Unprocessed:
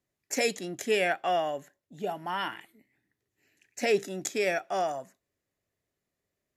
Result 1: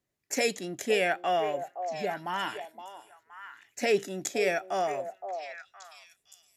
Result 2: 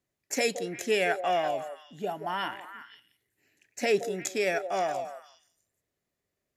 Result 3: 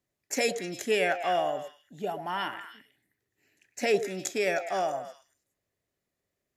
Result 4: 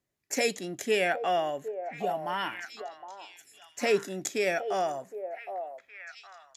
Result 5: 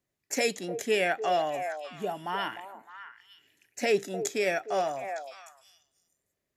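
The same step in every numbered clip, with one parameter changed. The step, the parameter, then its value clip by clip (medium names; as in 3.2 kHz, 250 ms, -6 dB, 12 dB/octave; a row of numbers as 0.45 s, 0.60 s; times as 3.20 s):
repeats whose band climbs or falls, time: 517 ms, 173 ms, 104 ms, 765 ms, 303 ms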